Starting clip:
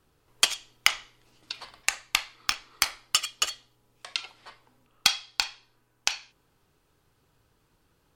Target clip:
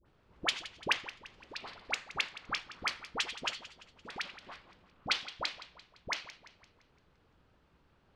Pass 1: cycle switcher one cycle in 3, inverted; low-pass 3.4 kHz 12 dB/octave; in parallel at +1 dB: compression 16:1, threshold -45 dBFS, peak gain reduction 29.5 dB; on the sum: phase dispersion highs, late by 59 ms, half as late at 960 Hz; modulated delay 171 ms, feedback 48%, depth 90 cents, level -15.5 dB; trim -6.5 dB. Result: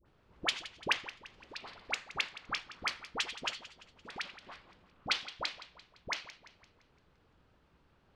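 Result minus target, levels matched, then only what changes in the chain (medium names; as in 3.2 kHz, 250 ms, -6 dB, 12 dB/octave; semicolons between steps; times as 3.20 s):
compression: peak gain reduction +6 dB
change: compression 16:1, threshold -38.5 dBFS, peak gain reduction 23.5 dB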